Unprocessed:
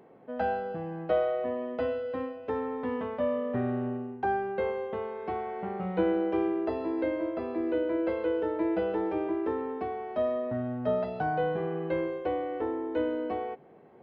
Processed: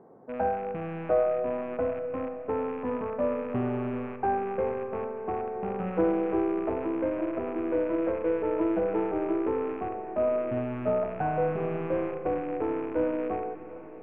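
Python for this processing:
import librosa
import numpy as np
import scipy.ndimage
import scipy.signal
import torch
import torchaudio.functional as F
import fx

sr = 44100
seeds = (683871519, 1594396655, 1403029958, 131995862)

y = fx.rattle_buzz(x, sr, strikes_db=-44.0, level_db=-23.0)
y = scipy.signal.sosfilt(scipy.signal.butter(4, 1400.0, 'lowpass', fs=sr, output='sos'), y)
y = fx.quant_float(y, sr, bits=8)
y = fx.echo_heads(y, sr, ms=365, heads='second and third', feedback_pct=44, wet_db=-19)
y = fx.rev_schroeder(y, sr, rt60_s=3.3, comb_ms=30, drr_db=9.0)
y = fx.doppler_dist(y, sr, depth_ms=0.11)
y = y * librosa.db_to_amplitude(1.5)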